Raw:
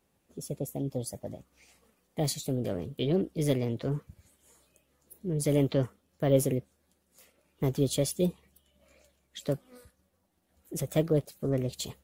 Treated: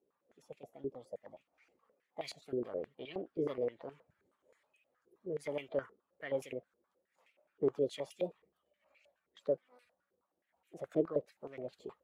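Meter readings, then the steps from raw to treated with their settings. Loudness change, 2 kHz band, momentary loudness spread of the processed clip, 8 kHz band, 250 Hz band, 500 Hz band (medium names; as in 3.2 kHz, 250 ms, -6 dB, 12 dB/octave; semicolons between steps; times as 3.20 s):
-9.0 dB, -4.5 dB, 16 LU, -23.5 dB, -12.5 dB, -6.0 dB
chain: coarse spectral quantiser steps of 15 dB; step-sequenced band-pass 9.5 Hz 400–2500 Hz; trim +3.5 dB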